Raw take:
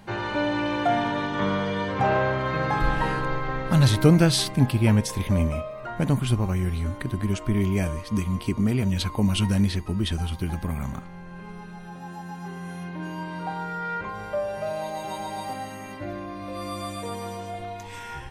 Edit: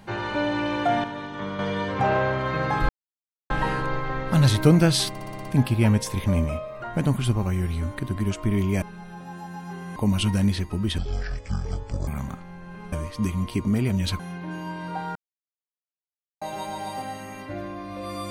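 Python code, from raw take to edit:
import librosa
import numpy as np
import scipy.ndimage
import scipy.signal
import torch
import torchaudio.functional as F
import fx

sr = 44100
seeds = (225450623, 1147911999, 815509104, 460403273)

y = fx.edit(x, sr, fx.clip_gain(start_s=1.04, length_s=0.55, db=-7.0),
    fx.insert_silence(at_s=2.89, length_s=0.61),
    fx.stutter(start_s=4.48, slice_s=0.06, count=7),
    fx.swap(start_s=7.85, length_s=1.27, other_s=11.57, other_length_s=1.14),
    fx.speed_span(start_s=10.14, length_s=0.58, speed=0.53),
    fx.silence(start_s=13.67, length_s=1.26), tone=tone)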